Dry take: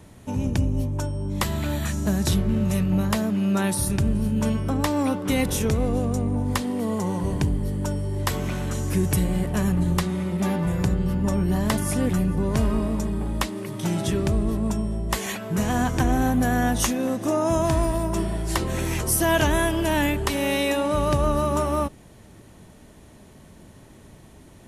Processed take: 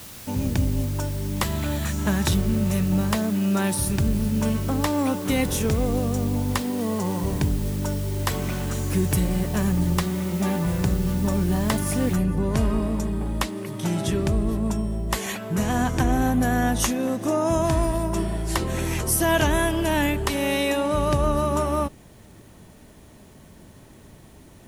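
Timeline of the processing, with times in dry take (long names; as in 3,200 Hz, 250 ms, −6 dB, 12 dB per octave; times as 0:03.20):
0:01.99–0:02.28: gain on a spectral selection 790–3,900 Hz +7 dB
0:12.16: noise floor change −42 dB −64 dB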